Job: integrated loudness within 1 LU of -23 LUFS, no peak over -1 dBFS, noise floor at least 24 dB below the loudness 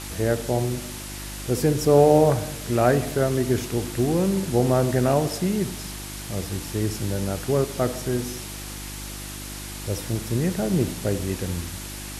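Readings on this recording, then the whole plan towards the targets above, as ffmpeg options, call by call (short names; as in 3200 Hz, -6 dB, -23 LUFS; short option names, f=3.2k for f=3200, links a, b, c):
hum 50 Hz; harmonics up to 350 Hz; hum level -35 dBFS; noise floor -35 dBFS; noise floor target -48 dBFS; loudness -24.0 LUFS; peak -4.5 dBFS; loudness target -23.0 LUFS
-> -af "bandreject=f=50:t=h:w=4,bandreject=f=100:t=h:w=4,bandreject=f=150:t=h:w=4,bandreject=f=200:t=h:w=4,bandreject=f=250:t=h:w=4,bandreject=f=300:t=h:w=4,bandreject=f=350:t=h:w=4"
-af "afftdn=nr=13:nf=-35"
-af "volume=1dB"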